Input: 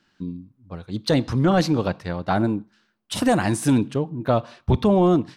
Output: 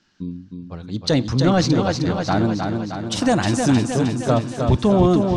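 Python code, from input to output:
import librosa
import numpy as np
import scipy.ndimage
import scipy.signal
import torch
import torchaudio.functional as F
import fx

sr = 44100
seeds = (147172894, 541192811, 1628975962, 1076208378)

p1 = fx.lowpass_res(x, sr, hz=6400.0, q=2.2)
p2 = fx.low_shelf(p1, sr, hz=210.0, db=3.0)
y = p2 + fx.echo_feedback(p2, sr, ms=311, feedback_pct=60, wet_db=-5, dry=0)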